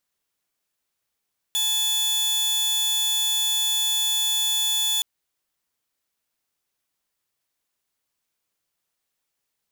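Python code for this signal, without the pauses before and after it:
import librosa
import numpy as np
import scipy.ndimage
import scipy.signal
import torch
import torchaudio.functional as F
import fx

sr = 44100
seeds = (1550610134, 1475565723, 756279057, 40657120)

y = 10.0 ** (-18.0 / 20.0) * (2.0 * np.mod(3460.0 * (np.arange(round(3.47 * sr)) / sr), 1.0) - 1.0)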